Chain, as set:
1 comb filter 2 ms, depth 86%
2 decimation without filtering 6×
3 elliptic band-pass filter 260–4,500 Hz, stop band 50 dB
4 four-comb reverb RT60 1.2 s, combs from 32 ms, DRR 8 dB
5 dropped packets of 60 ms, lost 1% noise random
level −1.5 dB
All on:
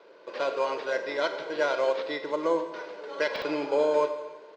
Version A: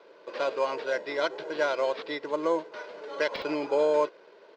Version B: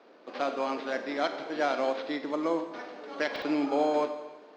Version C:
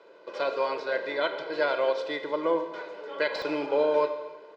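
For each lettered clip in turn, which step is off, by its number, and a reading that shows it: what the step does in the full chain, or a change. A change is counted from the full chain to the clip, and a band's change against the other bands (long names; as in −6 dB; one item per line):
4, change in momentary loudness spread −3 LU
1, 250 Hz band +7.0 dB
2, distortion level −9 dB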